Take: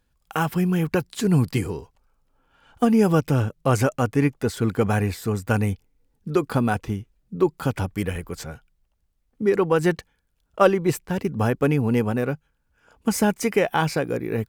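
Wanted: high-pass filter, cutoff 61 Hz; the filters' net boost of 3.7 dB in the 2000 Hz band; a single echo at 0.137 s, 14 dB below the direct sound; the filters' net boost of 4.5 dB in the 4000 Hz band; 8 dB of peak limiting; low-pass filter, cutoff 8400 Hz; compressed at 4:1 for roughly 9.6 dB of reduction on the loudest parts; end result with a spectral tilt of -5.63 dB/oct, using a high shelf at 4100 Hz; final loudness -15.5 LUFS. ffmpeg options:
-af "highpass=61,lowpass=8.4k,equalizer=f=2k:t=o:g=4.5,equalizer=f=4k:t=o:g=8,highshelf=f=4.1k:g=-5.5,acompressor=threshold=-22dB:ratio=4,alimiter=limit=-16.5dB:level=0:latency=1,aecho=1:1:137:0.2,volume=13.5dB"

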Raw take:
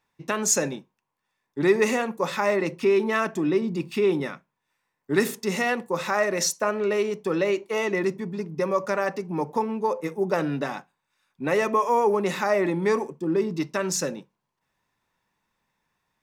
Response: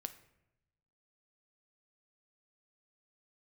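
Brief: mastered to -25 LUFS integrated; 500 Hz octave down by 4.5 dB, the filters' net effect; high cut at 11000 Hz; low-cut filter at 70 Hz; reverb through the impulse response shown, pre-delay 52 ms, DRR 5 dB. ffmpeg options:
-filter_complex "[0:a]highpass=70,lowpass=11k,equalizer=f=500:t=o:g=-6,asplit=2[a][b];[1:a]atrim=start_sample=2205,adelay=52[c];[b][c]afir=irnorm=-1:irlink=0,volume=-2dB[d];[a][d]amix=inputs=2:normalize=0,volume=1.5dB"

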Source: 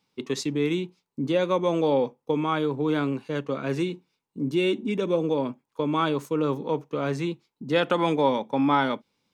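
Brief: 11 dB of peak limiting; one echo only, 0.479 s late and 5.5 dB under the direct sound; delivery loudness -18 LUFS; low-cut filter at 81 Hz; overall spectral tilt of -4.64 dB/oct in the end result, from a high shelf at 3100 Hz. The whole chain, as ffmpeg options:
-af "highpass=81,highshelf=f=3.1k:g=8.5,alimiter=limit=-19.5dB:level=0:latency=1,aecho=1:1:479:0.531,volume=10.5dB"

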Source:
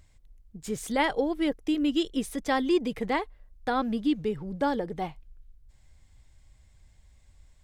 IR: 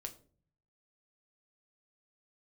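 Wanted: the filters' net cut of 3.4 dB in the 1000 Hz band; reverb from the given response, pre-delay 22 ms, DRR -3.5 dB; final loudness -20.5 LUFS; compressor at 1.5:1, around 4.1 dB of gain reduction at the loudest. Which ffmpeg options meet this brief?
-filter_complex "[0:a]equalizer=f=1k:t=o:g=-4.5,acompressor=threshold=-32dB:ratio=1.5,asplit=2[a][b];[1:a]atrim=start_sample=2205,adelay=22[c];[b][c]afir=irnorm=-1:irlink=0,volume=6.5dB[d];[a][d]amix=inputs=2:normalize=0,volume=7dB"

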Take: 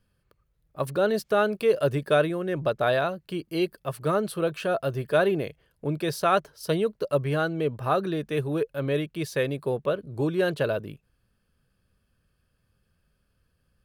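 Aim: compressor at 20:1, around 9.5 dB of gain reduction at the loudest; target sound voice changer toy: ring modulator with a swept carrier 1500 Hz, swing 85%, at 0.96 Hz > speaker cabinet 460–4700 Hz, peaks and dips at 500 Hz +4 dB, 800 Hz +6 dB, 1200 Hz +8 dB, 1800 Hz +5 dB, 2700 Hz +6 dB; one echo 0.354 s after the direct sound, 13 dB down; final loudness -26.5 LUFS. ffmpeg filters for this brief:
-af "acompressor=threshold=-25dB:ratio=20,aecho=1:1:354:0.224,aeval=exprs='val(0)*sin(2*PI*1500*n/s+1500*0.85/0.96*sin(2*PI*0.96*n/s))':c=same,highpass=460,equalizer=f=500:t=q:w=4:g=4,equalizer=f=800:t=q:w=4:g=6,equalizer=f=1.2k:t=q:w=4:g=8,equalizer=f=1.8k:t=q:w=4:g=5,equalizer=f=2.7k:t=q:w=4:g=6,lowpass=f=4.7k:w=0.5412,lowpass=f=4.7k:w=1.3066,volume=1.5dB"

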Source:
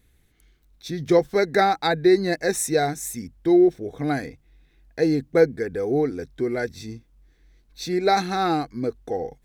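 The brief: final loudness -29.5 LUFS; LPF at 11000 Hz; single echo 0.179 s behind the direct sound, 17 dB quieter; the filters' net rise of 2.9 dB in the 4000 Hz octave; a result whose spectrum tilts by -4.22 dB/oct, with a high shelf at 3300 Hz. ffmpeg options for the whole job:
-af "lowpass=11k,highshelf=f=3.3k:g=-8.5,equalizer=f=4k:t=o:g=8.5,aecho=1:1:179:0.141,volume=-7dB"

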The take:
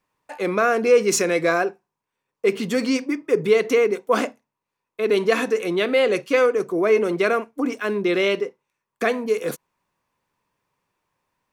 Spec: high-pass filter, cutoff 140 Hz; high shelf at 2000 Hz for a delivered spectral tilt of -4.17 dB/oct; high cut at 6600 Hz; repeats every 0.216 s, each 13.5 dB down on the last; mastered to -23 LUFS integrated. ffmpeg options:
-af "highpass=140,lowpass=6.6k,highshelf=f=2k:g=-8.5,aecho=1:1:216|432:0.211|0.0444,volume=-1dB"

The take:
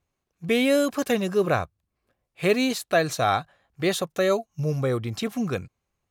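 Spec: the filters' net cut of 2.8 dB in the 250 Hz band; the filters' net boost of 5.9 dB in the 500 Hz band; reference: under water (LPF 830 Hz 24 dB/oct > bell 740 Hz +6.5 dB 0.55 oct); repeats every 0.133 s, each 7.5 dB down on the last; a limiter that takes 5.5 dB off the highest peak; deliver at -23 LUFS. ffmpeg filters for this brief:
-af "equalizer=f=250:t=o:g=-6,equalizer=f=500:t=o:g=6.5,alimiter=limit=-12dB:level=0:latency=1,lowpass=f=830:w=0.5412,lowpass=f=830:w=1.3066,equalizer=f=740:t=o:w=0.55:g=6.5,aecho=1:1:133|266|399|532|665:0.422|0.177|0.0744|0.0312|0.0131,volume=-0.5dB"

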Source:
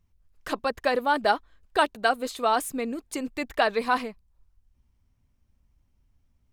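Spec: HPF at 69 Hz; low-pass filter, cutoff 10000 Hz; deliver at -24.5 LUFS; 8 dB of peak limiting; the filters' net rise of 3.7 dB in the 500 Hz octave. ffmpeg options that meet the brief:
-af "highpass=69,lowpass=10k,equalizer=f=500:t=o:g=4.5,volume=3dB,alimiter=limit=-11dB:level=0:latency=1"

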